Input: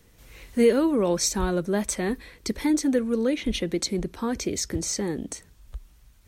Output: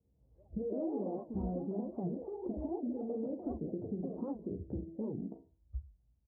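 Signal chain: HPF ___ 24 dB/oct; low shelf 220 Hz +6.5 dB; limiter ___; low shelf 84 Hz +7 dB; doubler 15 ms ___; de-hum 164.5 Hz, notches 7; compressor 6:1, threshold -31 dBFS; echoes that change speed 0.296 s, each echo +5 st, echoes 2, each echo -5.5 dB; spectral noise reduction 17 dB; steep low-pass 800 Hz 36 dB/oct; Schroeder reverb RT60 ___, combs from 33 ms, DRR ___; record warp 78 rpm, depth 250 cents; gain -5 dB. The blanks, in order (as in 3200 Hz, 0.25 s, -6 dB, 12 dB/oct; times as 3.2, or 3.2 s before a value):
61 Hz, -17 dBFS, -6.5 dB, 0.32 s, 8 dB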